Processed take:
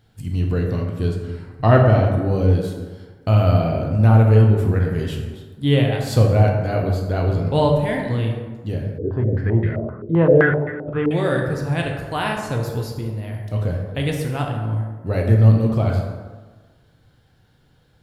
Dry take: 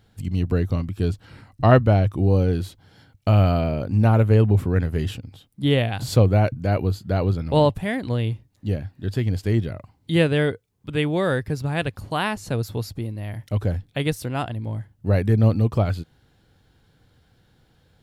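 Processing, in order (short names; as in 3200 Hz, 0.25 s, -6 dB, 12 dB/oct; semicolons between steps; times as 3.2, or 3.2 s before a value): plate-style reverb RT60 1.4 s, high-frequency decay 0.5×, DRR 0 dB; 8.98–11.11 stepped low-pass 7.7 Hz 440–1900 Hz; gain -1.5 dB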